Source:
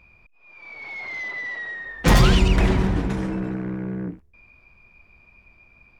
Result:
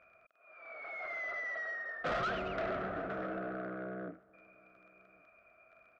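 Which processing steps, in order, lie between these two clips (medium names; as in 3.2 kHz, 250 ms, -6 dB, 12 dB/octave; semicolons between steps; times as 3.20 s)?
in parallel at +3 dB: compression, threshold -24 dBFS, peak gain reduction 12.5 dB; on the sum: crackle 16 per s -32 dBFS; two resonant band-passes 930 Hz, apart 1 oct; saturation -30.5 dBFS, distortion -8 dB; distance through air 120 m; echo from a far wall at 190 m, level -26 dB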